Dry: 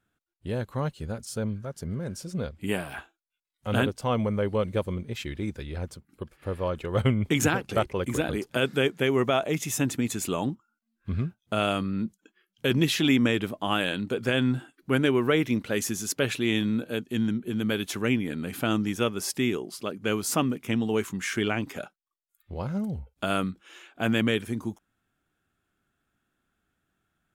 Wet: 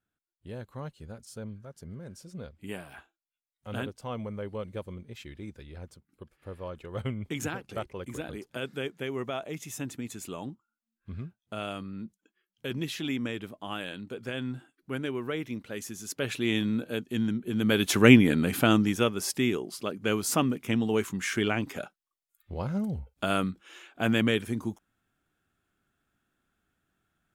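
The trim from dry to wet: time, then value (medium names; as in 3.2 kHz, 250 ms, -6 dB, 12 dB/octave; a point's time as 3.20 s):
15.93 s -10 dB
16.45 s -2 dB
17.45 s -2 dB
18.10 s +10 dB
19.15 s -0.5 dB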